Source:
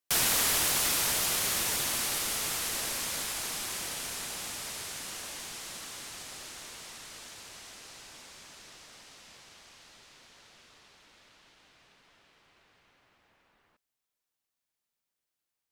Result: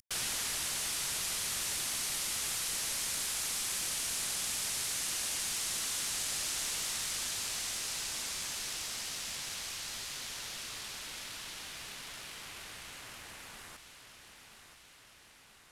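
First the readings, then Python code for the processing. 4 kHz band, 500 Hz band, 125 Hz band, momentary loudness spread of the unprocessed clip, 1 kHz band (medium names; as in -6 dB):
-1.0 dB, -7.0 dB, -4.0 dB, 22 LU, -5.5 dB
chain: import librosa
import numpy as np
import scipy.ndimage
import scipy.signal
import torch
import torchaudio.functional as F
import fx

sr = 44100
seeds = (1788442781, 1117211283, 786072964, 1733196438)

p1 = fx.cvsd(x, sr, bps=64000)
p2 = fx.peak_eq(p1, sr, hz=470.0, db=-5.5, octaves=3.0)
p3 = p2 + fx.echo_feedback(p2, sr, ms=978, feedback_pct=43, wet_db=-16, dry=0)
p4 = fx.rider(p3, sr, range_db=10, speed_s=0.5)
p5 = fx.high_shelf(p4, sr, hz=4900.0, db=5.5)
p6 = fx.env_flatten(p5, sr, amount_pct=50)
y = p6 * 10.0 ** (-4.0 / 20.0)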